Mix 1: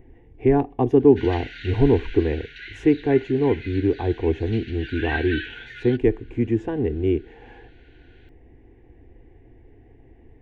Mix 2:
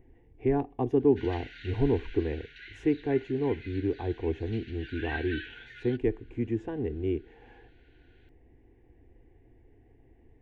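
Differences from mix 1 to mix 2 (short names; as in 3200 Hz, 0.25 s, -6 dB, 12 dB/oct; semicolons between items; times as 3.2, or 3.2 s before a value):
speech -8.5 dB; background -8.5 dB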